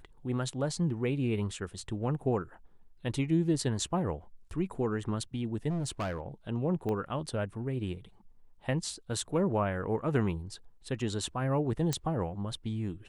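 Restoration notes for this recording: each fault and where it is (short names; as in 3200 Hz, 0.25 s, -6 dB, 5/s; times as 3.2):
5.69–6.2 clipped -29.5 dBFS
6.89 pop -23 dBFS
11.93 pop -15 dBFS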